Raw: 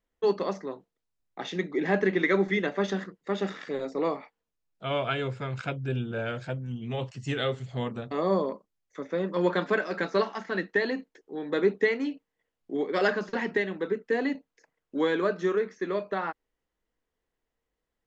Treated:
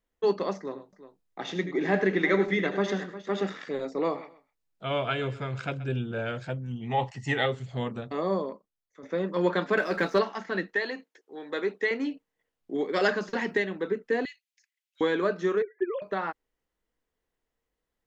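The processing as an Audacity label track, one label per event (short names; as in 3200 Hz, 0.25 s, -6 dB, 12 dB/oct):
0.570000	3.430000	tapped delay 79/101/356 ms -13/-13/-14.5 dB
4.000000	5.880000	feedback echo 0.128 s, feedback 24%, level -17 dB
6.800000	7.460000	small resonant body resonances 830/1900 Hz, height 16 dB, ringing for 25 ms
7.970000	9.030000	fade out, to -12.5 dB
9.770000	10.190000	sample leveller passes 1
10.740000	11.910000	HPF 660 Hz 6 dB/oct
12.740000	13.650000	high shelf 5900 Hz +8.5 dB
14.250000	15.010000	inverse Chebyshev high-pass stop band from 380 Hz, stop band 80 dB
15.620000	16.020000	sine-wave speech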